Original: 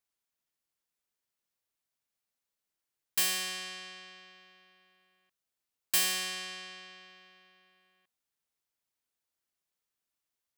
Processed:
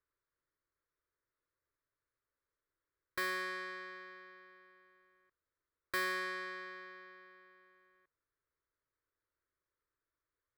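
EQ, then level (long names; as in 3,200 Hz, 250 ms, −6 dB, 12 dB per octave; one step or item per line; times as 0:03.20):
high-frequency loss of the air 450 metres
parametric band 650 Hz −3.5 dB 2.2 octaves
phaser with its sweep stopped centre 770 Hz, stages 6
+10.0 dB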